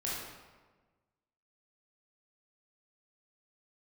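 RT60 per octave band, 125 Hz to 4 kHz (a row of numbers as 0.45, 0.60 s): 1.6, 1.5, 1.4, 1.3, 1.1, 0.90 s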